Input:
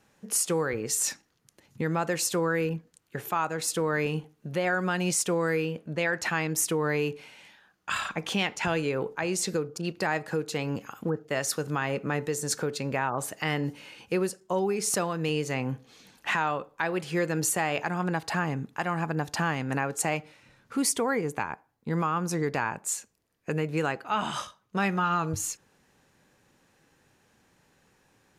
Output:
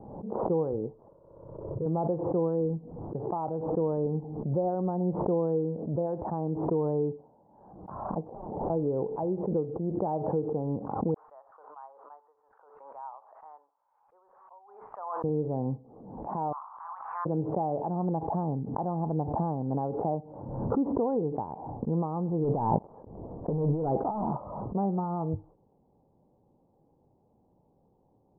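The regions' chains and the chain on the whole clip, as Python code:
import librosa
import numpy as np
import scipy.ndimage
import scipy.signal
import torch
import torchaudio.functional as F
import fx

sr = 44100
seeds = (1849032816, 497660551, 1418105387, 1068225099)

y = fx.chain(x, sr, fx.fixed_phaser(hz=1200.0, stages=8),
    fx.room_flutter(wall_m=10.6, rt60_s=1.5), at=(1.08, 1.86))
y = fx.chain(y, sr, fx.lowpass(hz=1100.0, slope=12),
    fx.overflow_wrap(gain_db=33.5), at=(8.27, 8.7))
y = fx.chain(y, sr, fx.crossing_spikes(level_db=-26.0),
    fx.highpass(hz=1200.0, slope=24),
    fx.band_widen(depth_pct=100), at=(11.14, 15.24))
y = fx.spec_clip(y, sr, under_db=17, at=(16.51, 17.25), fade=0.02)
y = fx.steep_highpass(y, sr, hz=1100.0, slope=48, at=(16.51, 17.25), fade=0.02)
y = fx.env_flatten(y, sr, amount_pct=70, at=(16.51, 17.25), fade=0.02)
y = fx.chain(y, sr, fx.leveller(passes=3),
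    fx.over_compress(threshold_db=-27.0, ratio=-1.0), at=(22.44, 24.37))
y = scipy.signal.sosfilt(scipy.signal.butter(8, 900.0, 'lowpass', fs=sr, output='sos'), y)
y = fx.pre_swell(y, sr, db_per_s=47.0)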